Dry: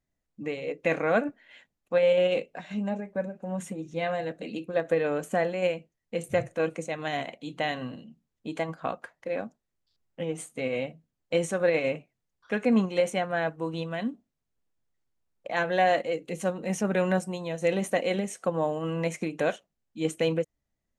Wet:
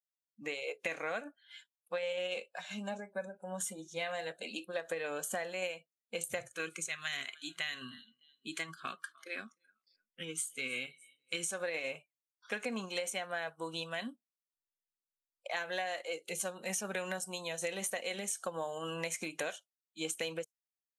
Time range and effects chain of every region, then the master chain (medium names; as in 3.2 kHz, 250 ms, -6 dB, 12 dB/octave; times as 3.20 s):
6.48–11.51 s: high-order bell 710 Hz -14 dB 1.1 oct + feedback delay 303 ms, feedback 44%, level -22 dB
whole clip: spectral noise reduction 21 dB; tilt EQ +4 dB/octave; compression 12:1, threshold -30 dBFS; trim -3 dB